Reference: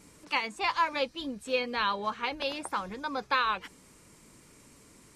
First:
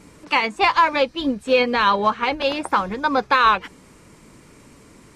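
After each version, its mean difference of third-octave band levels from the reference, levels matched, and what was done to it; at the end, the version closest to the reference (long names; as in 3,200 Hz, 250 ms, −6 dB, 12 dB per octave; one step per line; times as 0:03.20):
3.0 dB: high-shelf EQ 4,300 Hz −10 dB
in parallel at −10.5 dB: soft clipping −27 dBFS, distortion −11 dB
on the sum: boost into a limiter +21 dB
expander for the loud parts 1.5 to 1, over −21 dBFS
level −5.5 dB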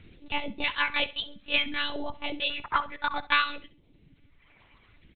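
9.0 dB: all-pass phaser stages 2, 0.59 Hz, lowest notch 280–1,400 Hz
reverb reduction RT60 2 s
one-pitch LPC vocoder at 8 kHz 290 Hz
on a send: repeating echo 67 ms, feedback 28%, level −17 dB
on the sum: level +8.5 dB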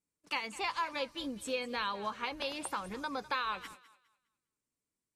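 7.0 dB: high-shelf EQ 8,100 Hz +7.5 dB
noise gate −48 dBFS, range −37 dB
downward compressor 2 to 1, threshold −37 dBFS, peak gain reduction 9 dB
on a send: feedback echo with a high-pass in the loop 204 ms, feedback 28%, high-pass 420 Hz, level −17 dB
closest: first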